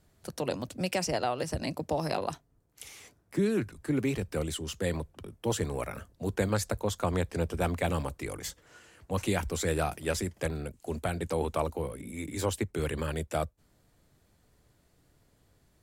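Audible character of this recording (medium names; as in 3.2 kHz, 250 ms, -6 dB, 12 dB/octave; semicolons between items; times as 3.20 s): noise floor -68 dBFS; spectral tilt -5.0 dB/octave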